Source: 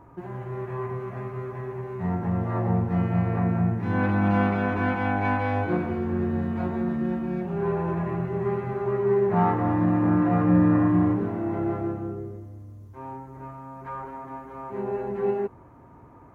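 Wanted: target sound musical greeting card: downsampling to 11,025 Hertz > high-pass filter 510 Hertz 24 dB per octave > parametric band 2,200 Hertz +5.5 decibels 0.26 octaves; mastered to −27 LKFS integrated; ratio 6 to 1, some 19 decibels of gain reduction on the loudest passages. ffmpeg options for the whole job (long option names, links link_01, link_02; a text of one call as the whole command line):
ffmpeg -i in.wav -af "acompressor=threshold=-36dB:ratio=6,aresample=11025,aresample=44100,highpass=frequency=510:width=0.5412,highpass=frequency=510:width=1.3066,equalizer=frequency=2200:width_type=o:width=0.26:gain=5.5,volume=18.5dB" out.wav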